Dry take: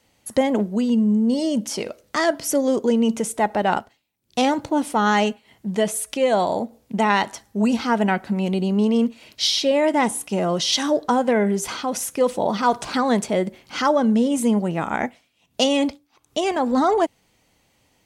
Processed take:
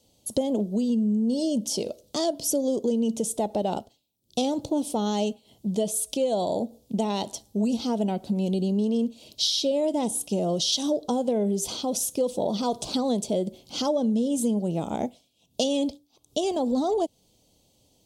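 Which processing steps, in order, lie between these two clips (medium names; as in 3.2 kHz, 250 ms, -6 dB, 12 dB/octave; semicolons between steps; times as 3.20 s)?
FFT filter 620 Hz 0 dB, 1.8 kHz -25 dB, 3.4 kHz +1 dB; compression 3:1, threshold -23 dBFS, peak gain reduction 8 dB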